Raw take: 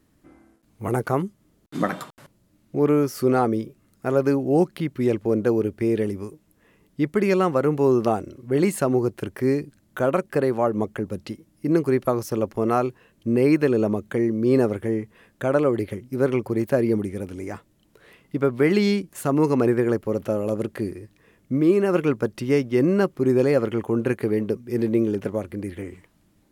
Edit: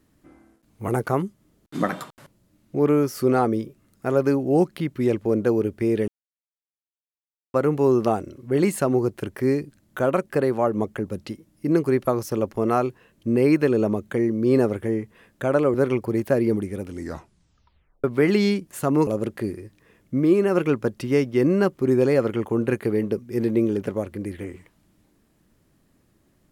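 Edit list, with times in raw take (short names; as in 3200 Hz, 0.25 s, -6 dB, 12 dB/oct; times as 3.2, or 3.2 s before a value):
6.08–7.54 mute
15.74–16.16 cut
17.32 tape stop 1.14 s
19.49–20.45 cut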